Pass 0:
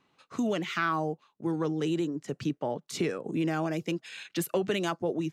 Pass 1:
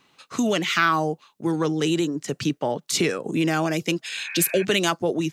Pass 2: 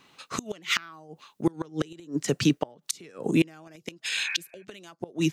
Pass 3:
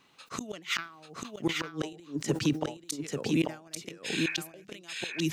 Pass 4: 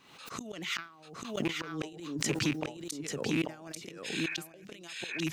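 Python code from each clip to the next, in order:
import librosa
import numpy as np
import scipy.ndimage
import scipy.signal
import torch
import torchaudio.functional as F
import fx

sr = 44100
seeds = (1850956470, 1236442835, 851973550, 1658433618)

y1 = fx.spec_repair(x, sr, seeds[0], start_s=4.25, length_s=0.37, low_hz=690.0, high_hz=2600.0, source='before')
y1 = fx.high_shelf(y1, sr, hz=2100.0, db=9.5)
y1 = y1 * 10.0 ** (6.0 / 20.0)
y2 = fx.gate_flip(y1, sr, shuts_db=-14.0, range_db=-28)
y2 = y2 * 10.0 ** (2.5 / 20.0)
y3 = y2 + 10.0 ** (-3.5 / 20.0) * np.pad(y2, (int(840 * sr / 1000.0), 0))[:len(y2)]
y3 = fx.sustainer(y3, sr, db_per_s=150.0)
y3 = y3 * 10.0 ** (-5.5 / 20.0)
y4 = fx.rattle_buzz(y3, sr, strikes_db=-30.0, level_db=-20.0)
y4 = fx.pre_swell(y4, sr, db_per_s=66.0)
y4 = y4 * 10.0 ** (-4.5 / 20.0)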